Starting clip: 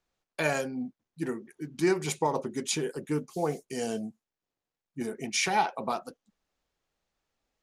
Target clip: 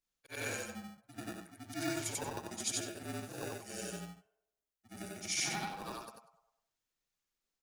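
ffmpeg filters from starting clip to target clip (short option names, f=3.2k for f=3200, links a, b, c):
-filter_complex "[0:a]afftfilt=real='re':imag='-im':win_size=8192:overlap=0.75,highshelf=f=4.4k:g=12,acrossover=split=760[a][b];[a]acrusher=samples=41:mix=1:aa=0.000001[c];[b]asplit=2[d][e];[e]adelay=101,lowpass=f=1.8k:p=1,volume=-5.5dB,asplit=2[f][g];[g]adelay=101,lowpass=f=1.8k:p=1,volume=0.52,asplit=2[h][i];[i]adelay=101,lowpass=f=1.8k:p=1,volume=0.52,asplit=2[j][k];[k]adelay=101,lowpass=f=1.8k:p=1,volume=0.52,asplit=2[l][m];[m]adelay=101,lowpass=f=1.8k:p=1,volume=0.52,asplit=2[n][o];[o]adelay=101,lowpass=f=1.8k:p=1,volume=0.52,asplit=2[p][q];[q]adelay=101,lowpass=f=1.8k:p=1,volume=0.52[r];[d][f][h][j][l][n][p][r]amix=inputs=8:normalize=0[s];[c][s]amix=inputs=2:normalize=0,afreqshift=-41,volume=-7dB"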